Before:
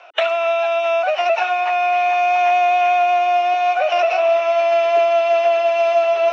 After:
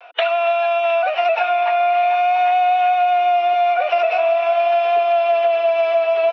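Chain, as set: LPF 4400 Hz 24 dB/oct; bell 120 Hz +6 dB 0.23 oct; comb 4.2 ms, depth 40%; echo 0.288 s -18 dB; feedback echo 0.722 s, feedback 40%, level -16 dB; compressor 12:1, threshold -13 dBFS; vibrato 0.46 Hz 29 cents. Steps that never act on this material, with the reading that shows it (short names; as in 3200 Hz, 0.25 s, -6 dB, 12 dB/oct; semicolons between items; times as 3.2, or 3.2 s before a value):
bell 120 Hz: input band starts at 340 Hz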